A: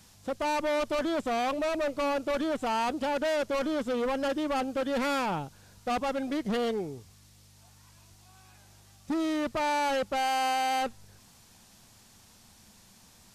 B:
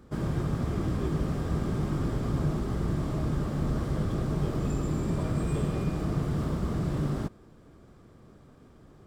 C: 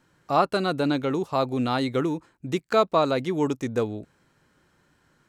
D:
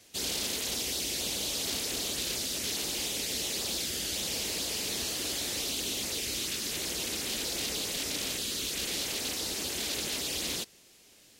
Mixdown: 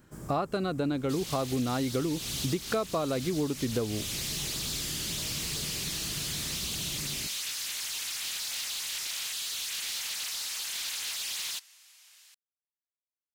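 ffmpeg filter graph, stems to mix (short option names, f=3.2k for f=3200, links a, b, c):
-filter_complex "[1:a]aexciter=amount=5.5:drive=7:freq=5.8k,volume=-13dB[a];[2:a]lowshelf=f=400:g=6.5,bandreject=f=910:w=12,volume=0.5dB[b];[3:a]highpass=f=1k:w=0.5412,highpass=f=1k:w=1.3066,asoftclip=type=tanh:threshold=-31.5dB,adelay=950,volume=2dB[c];[a][b][c]amix=inputs=3:normalize=0,acompressor=threshold=-27dB:ratio=6"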